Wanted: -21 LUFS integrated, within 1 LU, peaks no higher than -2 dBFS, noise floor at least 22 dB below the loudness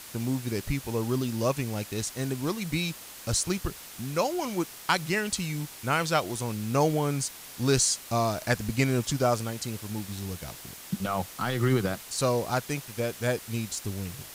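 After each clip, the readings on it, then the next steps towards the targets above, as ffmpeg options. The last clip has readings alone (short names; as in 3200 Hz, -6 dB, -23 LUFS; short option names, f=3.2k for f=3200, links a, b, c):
noise floor -45 dBFS; noise floor target -51 dBFS; loudness -29.0 LUFS; peak -7.5 dBFS; loudness target -21.0 LUFS
-> -af "afftdn=nr=6:nf=-45"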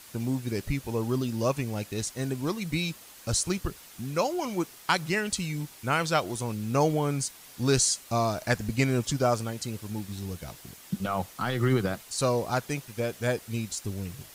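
noise floor -50 dBFS; noise floor target -51 dBFS
-> -af "afftdn=nr=6:nf=-50"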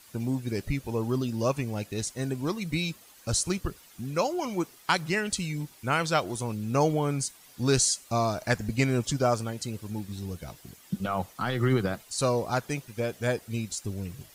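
noise floor -54 dBFS; loudness -29.0 LUFS; peak -8.0 dBFS; loudness target -21.0 LUFS
-> -af "volume=8dB,alimiter=limit=-2dB:level=0:latency=1"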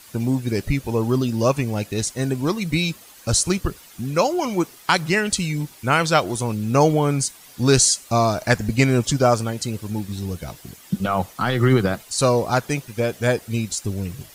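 loudness -21.0 LUFS; peak -2.0 dBFS; noise floor -46 dBFS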